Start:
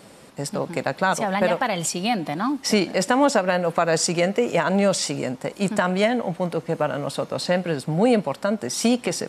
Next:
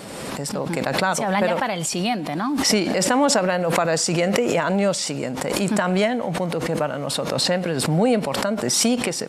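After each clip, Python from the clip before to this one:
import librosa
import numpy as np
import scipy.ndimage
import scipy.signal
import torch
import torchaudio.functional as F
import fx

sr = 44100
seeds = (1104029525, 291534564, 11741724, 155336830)

y = fx.pre_swell(x, sr, db_per_s=27.0)
y = F.gain(torch.from_numpy(y), -1.0).numpy()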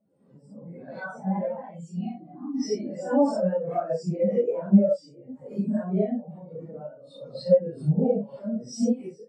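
y = fx.phase_scramble(x, sr, seeds[0], window_ms=200)
y = fx.spectral_expand(y, sr, expansion=2.5)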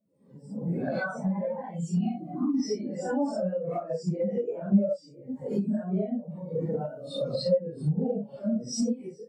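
y = fx.recorder_agc(x, sr, target_db=-15.0, rise_db_per_s=25.0, max_gain_db=30)
y = fx.notch_cascade(y, sr, direction='falling', hz=0.8)
y = F.gain(torch.from_numpy(y), -5.0).numpy()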